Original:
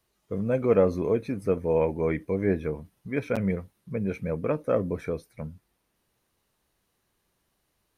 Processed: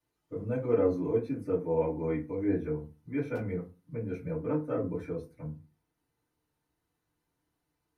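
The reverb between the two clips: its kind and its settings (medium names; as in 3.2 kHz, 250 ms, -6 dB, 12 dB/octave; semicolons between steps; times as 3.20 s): FDN reverb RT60 0.3 s, low-frequency decay 1.35×, high-frequency decay 0.5×, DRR -10 dB; trim -18 dB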